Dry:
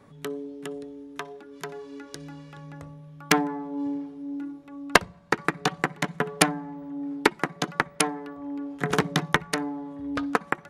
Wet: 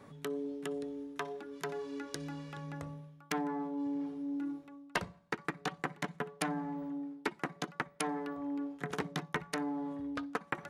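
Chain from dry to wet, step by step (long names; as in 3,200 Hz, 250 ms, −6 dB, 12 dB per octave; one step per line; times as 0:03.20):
reversed playback
downward compressor 5 to 1, threshold −34 dBFS, peak gain reduction 21.5 dB
reversed playback
low-shelf EQ 75 Hz −7 dB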